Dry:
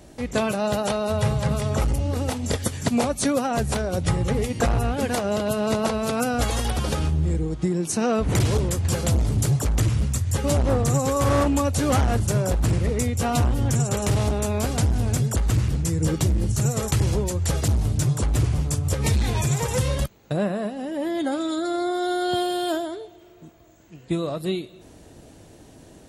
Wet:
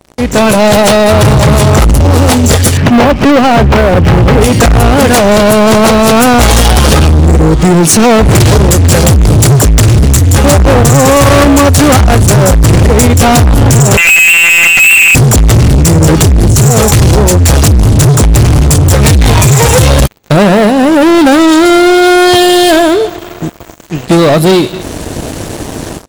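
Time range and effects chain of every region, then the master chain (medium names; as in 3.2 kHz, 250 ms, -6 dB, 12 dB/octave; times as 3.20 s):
2.77–4.41 s: brick-wall FIR low-pass 3.2 kHz + sliding maximum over 5 samples
13.97–15.15 s: frequency inversion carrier 2.7 kHz + monotone LPC vocoder at 8 kHz 170 Hz
whole clip: level rider; waveshaping leveller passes 5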